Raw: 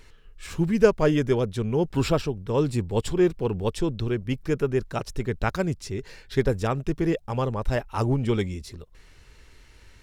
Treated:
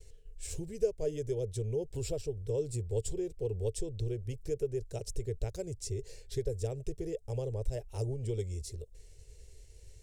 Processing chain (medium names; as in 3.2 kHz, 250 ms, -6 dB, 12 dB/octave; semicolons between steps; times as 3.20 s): compression 3:1, threshold -29 dBFS, peak gain reduction 13.5 dB; expander -49 dBFS; FFT filter 110 Hz 0 dB, 190 Hz -16 dB, 270 Hz -17 dB, 440 Hz +1 dB, 630 Hz -7 dB, 1.2 kHz -28 dB, 2.1 kHz -15 dB, 3.8 kHz -10 dB, 8.1 kHz +5 dB, 12 kHz -3 dB